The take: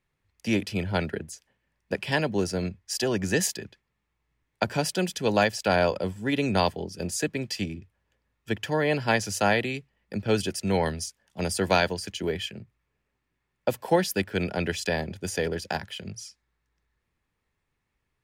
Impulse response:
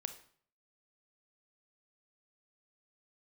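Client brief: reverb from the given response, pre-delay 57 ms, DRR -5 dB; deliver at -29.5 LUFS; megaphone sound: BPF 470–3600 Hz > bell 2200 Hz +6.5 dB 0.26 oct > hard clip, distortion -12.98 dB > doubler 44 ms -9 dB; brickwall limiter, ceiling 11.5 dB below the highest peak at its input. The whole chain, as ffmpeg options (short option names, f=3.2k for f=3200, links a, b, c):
-filter_complex "[0:a]alimiter=limit=-20dB:level=0:latency=1,asplit=2[a][b];[1:a]atrim=start_sample=2205,adelay=57[c];[b][c]afir=irnorm=-1:irlink=0,volume=6.5dB[d];[a][d]amix=inputs=2:normalize=0,highpass=470,lowpass=3.6k,equalizer=f=2.2k:t=o:w=0.26:g=6.5,asoftclip=type=hard:threshold=-23.5dB,asplit=2[e][f];[f]adelay=44,volume=-9dB[g];[e][g]amix=inputs=2:normalize=0,volume=0.5dB"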